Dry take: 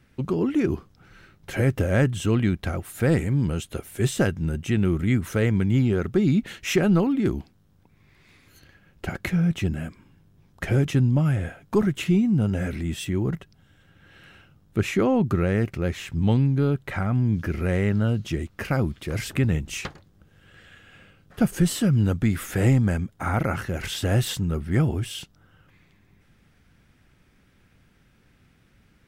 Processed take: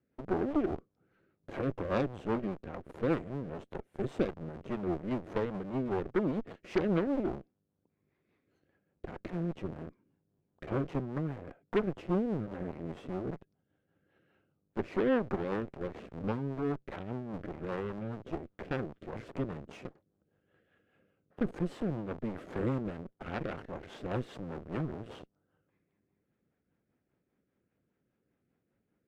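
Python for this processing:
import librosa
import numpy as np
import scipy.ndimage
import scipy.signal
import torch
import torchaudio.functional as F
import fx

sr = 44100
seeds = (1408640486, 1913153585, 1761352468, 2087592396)

p1 = fx.schmitt(x, sr, flips_db=-33.5)
p2 = x + (p1 * librosa.db_to_amplitude(-6.0))
p3 = fx.bandpass_q(p2, sr, hz=460.0, q=0.92)
p4 = fx.cheby_harmonics(p3, sr, harmonics=(7, 8), levels_db=(-26, -16), full_scale_db=-9.5)
p5 = fx.rotary(p4, sr, hz=5.0)
y = p5 * librosa.db_to_amplitude(-6.5)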